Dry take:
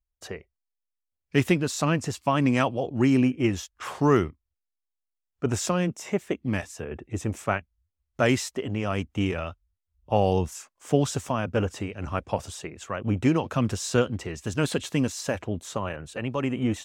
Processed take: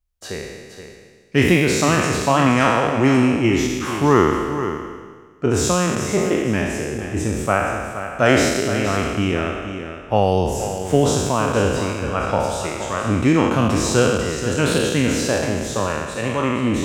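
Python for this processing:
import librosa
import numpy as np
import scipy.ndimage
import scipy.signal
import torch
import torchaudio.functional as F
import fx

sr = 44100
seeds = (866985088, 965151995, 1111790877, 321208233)

y = fx.spec_trails(x, sr, decay_s=1.5)
y = y + 10.0 ** (-10.0 / 20.0) * np.pad(y, (int(472 * sr / 1000.0), 0))[:len(y)]
y = y * 10.0 ** (4.0 / 20.0)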